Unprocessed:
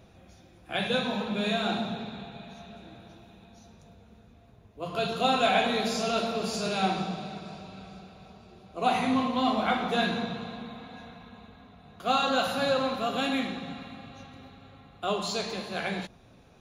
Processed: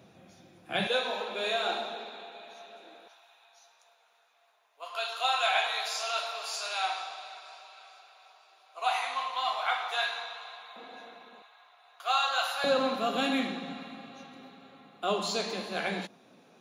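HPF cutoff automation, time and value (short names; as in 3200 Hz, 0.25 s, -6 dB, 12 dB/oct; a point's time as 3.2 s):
HPF 24 dB/oct
120 Hz
from 0.87 s 380 Hz
from 3.08 s 790 Hz
from 10.76 s 320 Hz
from 11.42 s 770 Hz
from 12.64 s 190 Hz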